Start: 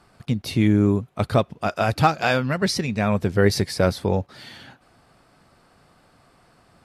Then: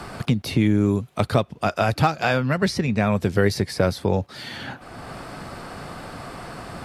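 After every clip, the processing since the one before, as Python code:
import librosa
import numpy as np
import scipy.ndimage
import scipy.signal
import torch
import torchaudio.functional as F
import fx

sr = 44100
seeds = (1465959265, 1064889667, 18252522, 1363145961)

y = fx.band_squash(x, sr, depth_pct=70)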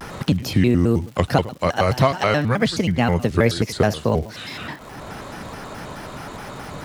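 y = fx.dmg_crackle(x, sr, seeds[0], per_s=320.0, level_db=-38.0)
y = y + 10.0 ** (-16.5 / 20.0) * np.pad(y, (int(99 * sr / 1000.0), 0))[:len(y)]
y = fx.vibrato_shape(y, sr, shape='square', rate_hz=4.7, depth_cents=250.0)
y = y * 10.0 ** (2.0 / 20.0)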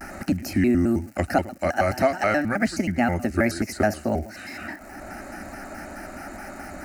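y = fx.fixed_phaser(x, sr, hz=690.0, stages=8)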